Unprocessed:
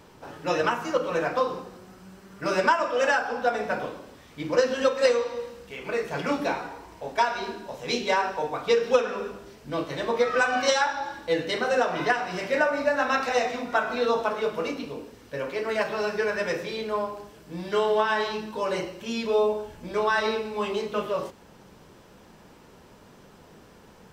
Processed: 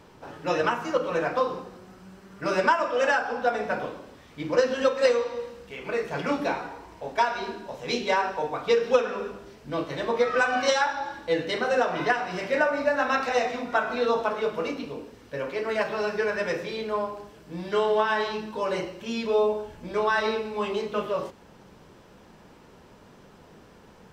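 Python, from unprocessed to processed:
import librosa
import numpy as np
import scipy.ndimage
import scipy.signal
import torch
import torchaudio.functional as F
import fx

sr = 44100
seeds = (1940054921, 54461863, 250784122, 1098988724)

y = fx.high_shelf(x, sr, hz=6700.0, db=-6.5)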